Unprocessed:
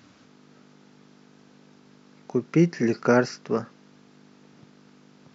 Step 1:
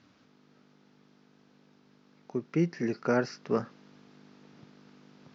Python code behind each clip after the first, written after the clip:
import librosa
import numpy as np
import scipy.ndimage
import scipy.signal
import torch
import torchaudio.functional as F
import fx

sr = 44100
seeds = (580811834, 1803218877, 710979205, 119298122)

y = fx.rider(x, sr, range_db=10, speed_s=0.5)
y = scipy.signal.sosfilt(scipy.signal.butter(4, 5900.0, 'lowpass', fs=sr, output='sos'), y)
y = F.gain(torch.from_numpy(y), -6.0).numpy()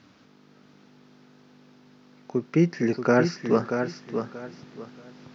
y = fx.echo_feedback(x, sr, ms=632, feedback_pct=25, wet_db=-7)
y = F.gain(torch.from_numpy(y), 6.5).numpy()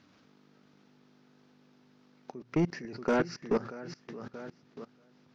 y = fx.hum_notches(x, sr, base_hz=60, count=2)
y = fx.level_steps(y, sr, step_db=21)
y = 10.0 ** (-20.0 / 20.0) * np.tanh(y / 10.0 ** (-20.0 / 20.0))